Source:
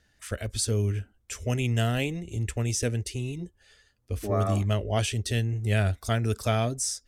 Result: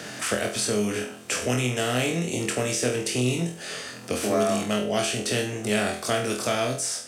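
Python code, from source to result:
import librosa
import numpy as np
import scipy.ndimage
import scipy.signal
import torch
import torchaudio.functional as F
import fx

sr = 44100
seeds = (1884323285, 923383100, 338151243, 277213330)

p1 = fx.bin_compress(x, sr, power=0.6)
p2 = scipy.signal.sosfilt(scipy.signal.butter(4, 150.0, 'highpass', fs=sr, output='sos'), p1)
p3 = fx.rider(p2, sr, range_db=4, speed_s=0.5)
p4 = p3 + fx.room_flutter(p3, sr, wall_m=4.1, rt60_s=0.39, dry=0)
y = fx.band_squash(p4, sr, depth_pct=40)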